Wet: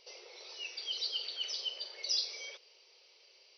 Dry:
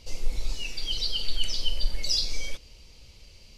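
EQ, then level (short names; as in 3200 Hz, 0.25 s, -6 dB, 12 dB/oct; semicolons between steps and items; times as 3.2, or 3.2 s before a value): brick-wall FIR band-pass 350–6100 Hz; -6.0 dB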